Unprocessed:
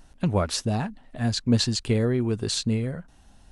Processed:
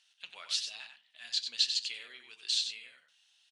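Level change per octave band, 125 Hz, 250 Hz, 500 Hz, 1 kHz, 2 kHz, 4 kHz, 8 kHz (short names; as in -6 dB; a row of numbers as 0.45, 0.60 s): under -40 dB, under -40 dB, under -35 dB, under -20 dB, -6.5 dB, -0.5 dB, -7.0 dB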